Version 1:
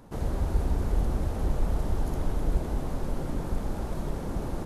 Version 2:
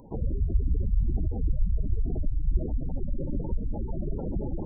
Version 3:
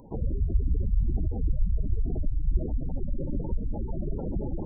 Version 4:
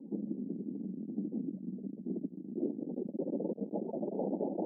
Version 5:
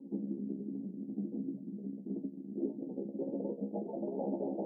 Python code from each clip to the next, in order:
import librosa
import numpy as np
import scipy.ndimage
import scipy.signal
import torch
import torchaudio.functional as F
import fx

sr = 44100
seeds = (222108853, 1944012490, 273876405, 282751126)

y1 = fx.spec_gate(x, sr, threshold_db=-15, keep='strong')
y1 = fx.bass_treble(y1, sr, bass_db=-3, treble_db=12)
y1 = y1 * 10.0 ** (4.5 / 20.0)
y2 = y1
y3 = np.clip(y2, -10.0 ** (-30.5 / 20.0), 10.0 ** (-30.5 / 20.0))
y3 = scipy.signal.sosfilt(scipy.signal.cheby1(4, 1.0, [190.0, 870.0], 'bandpass', fs=sr, output='sos'), y3)
y3 = fx.filter_sweep_lowpass(y3, sr, from_hz=270.0, to_hz=680.0, start_s=2.02, end_s=4.09, q=1.8)
y3 = y3 * 10.0 ** (2.0 / 20.0)
y4 = fx.comb_fb(y3, sr, f0_hz=68.0, decay_s=0.19, harmonics='all', damping=0.0, mix_pct=100)
y4 = y4 * 10.0 ** (4.5 / 20.0)